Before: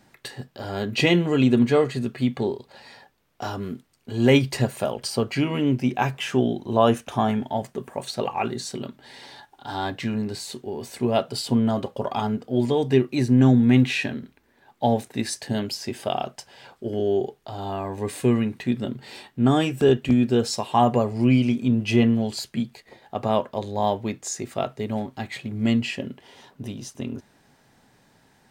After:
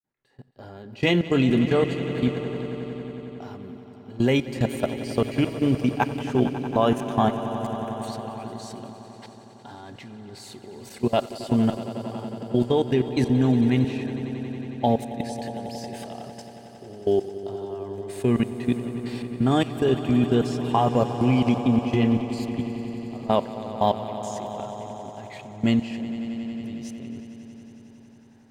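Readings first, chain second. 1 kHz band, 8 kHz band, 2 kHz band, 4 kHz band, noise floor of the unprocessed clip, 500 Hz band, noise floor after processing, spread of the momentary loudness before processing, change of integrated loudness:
−1.5 dB, −8.5 dB, −3.5 dB, −4.5 dB, −62 dBFS, −1.5 dB, −48 dBFS, 16 LU, −1.5 dB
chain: fade in at the beginning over 1.32 s
output level in coarse steps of 22 dB
on a send: echo that builds up and dies away 91 ms, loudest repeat 5, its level −15 dB
on the sum: one half of a high-frequency compander decoder only
level +3 dB

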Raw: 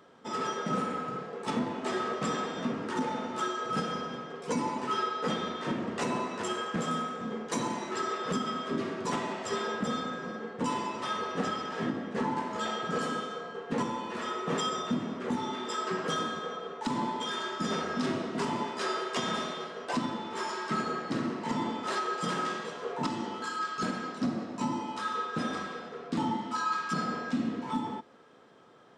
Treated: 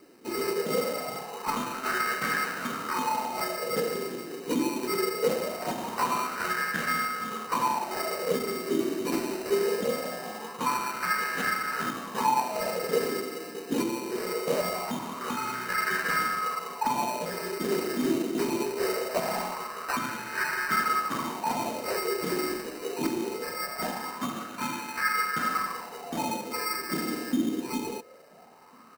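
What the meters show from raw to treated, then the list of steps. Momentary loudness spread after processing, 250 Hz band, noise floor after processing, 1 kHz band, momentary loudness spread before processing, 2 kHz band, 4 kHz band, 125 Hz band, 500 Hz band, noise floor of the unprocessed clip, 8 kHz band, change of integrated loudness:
7 LU, +0.5 dB, −42 dBFS, +3.0 dB, 4 LU, +7.0 dB, +1.0 dB, −3.0 dB, +5.0 dB, −43 dBFS, +6.5 dB, +3.5 dB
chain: decimation without filtering 13×
high-shelf EQ 2,500 Hz +8 dB
slap from a distant wall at 240 metres, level −24 dB
auto-filter bell 0.22 Hz 320–1,600 Hz +17 dB
level −5 dB

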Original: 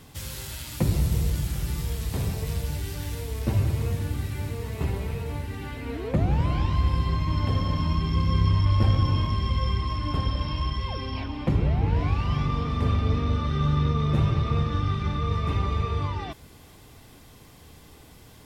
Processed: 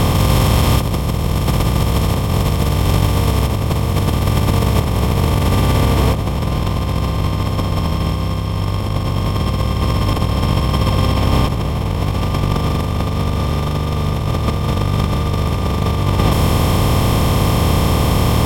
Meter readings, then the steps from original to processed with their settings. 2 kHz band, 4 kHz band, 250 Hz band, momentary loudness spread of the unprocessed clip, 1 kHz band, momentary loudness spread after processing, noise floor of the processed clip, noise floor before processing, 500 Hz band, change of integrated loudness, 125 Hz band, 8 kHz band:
+12.5 dB, +13.0 dB, +11.5 dB, 9 LU, +12.0 dB, 4 LU, −19 dBFS, −50 dBFS, +14.0 dB, +9.5 dB, +9.5 dB, can't be measured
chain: compressor on every frequency bin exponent 0.2
compressor whose output falls as the input rises −19 dBFS, ratio −0.5
level +4.5 dB

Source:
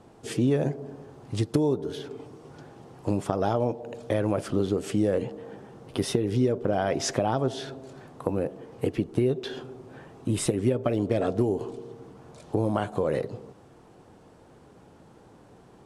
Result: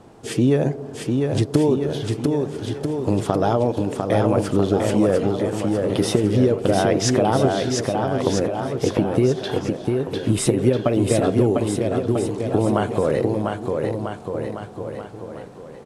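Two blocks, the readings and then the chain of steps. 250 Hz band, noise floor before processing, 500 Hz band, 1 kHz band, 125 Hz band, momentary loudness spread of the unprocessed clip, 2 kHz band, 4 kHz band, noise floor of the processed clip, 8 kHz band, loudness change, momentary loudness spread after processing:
+8.5 dB, −54 dBFS, +8.0 dB, +8.0 dB, +8.0 dB, 19 LU, +8.0 dB, +8.0 dB, −38 dBFS, +8.0 dB, +7.0 dB, 10 LU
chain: bouncing-ball delay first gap 700 ms, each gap 0.85×, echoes 5
level +6 dB

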